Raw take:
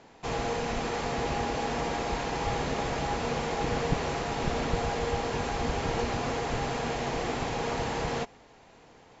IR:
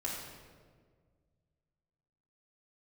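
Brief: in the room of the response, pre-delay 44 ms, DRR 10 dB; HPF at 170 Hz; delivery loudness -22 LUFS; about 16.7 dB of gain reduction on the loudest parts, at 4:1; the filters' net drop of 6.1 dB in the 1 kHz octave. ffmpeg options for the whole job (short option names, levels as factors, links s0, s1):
-filter_complex "[0:a]highpass=170,equalizer=f=1000:t=o:g=-8.5,acompressor=threshold=0.00355:ratio=4,asplit=2[s0][s1];[1:a]atrim=start_sample=2205,adelay=44[s2];[s1][s2]afir=irnorm=-1:irlink=0,volume=0.224[s3];[s0][s3]amix=inputs=2:normalize=0,volume=21.1"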